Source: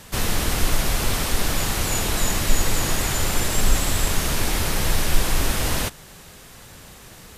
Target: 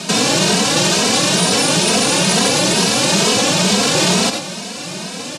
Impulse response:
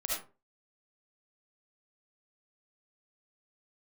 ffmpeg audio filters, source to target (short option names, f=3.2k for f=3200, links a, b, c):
-filter_complex "[0:a]equalizer=f=3k:w=0.52:g=4,bandreject=f=2.4k:w=29,asetrate=60417,aresample=44100,highpass=f=170:w=0.5412,highpass=f=170:w=1.3066,equalizer=f=180:t=q:w=4:g=8,equalizer=f=520:t=q:w=4:g=4,equalizer=f=1.3k:t=q:w=4:g=-5,equalizer=f=2k:t=q:w=4:g=-8,lowpass=f=8.6k:w=0.5412,lowpass=f=8.6k:w=1.3066,asplit=2[a][b];[1:a]atrim=start_sample=2205[c];[b][c]afir=irnorm=-1:irlink=0,volume=-12.5dB[d];[a][d]amix=inputs=2:normalize=0,alimiter=level_in=20dB:limit=-1dB:release=50:level=0:latency=1,asplit=2[e][f];[f]adelay=2.8,afreqshift=2.2[g];[e][g]amix=inputs=2:normalize=1,volume=-1.5dB"